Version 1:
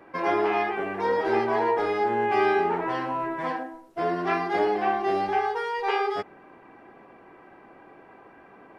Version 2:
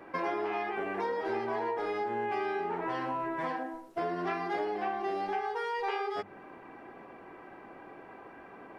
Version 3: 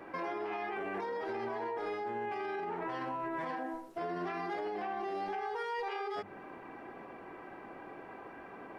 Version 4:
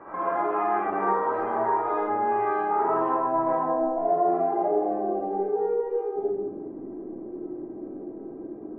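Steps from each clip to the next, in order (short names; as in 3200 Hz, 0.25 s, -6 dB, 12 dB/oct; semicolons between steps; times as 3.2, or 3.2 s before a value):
notches 50/100/150/200 Hz; compressor 5:1, threshold -32 dBFS, peak gain reduction 13 dB; gain +1 dB
limiter -31 dBFS, peak gain reduction 9.5 dB; gain +1 dB
low-pass sweep 1200 Hz -> 330 Hz, 2.6–6.43; reverb RT60 1.1 s, pre-delay 25 ms, DRR -8 dB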